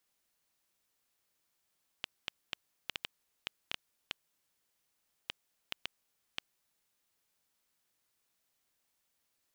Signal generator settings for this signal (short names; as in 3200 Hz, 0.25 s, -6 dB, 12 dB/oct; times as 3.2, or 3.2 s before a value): random clicks 2.8/s -17 dBFS 4.87 s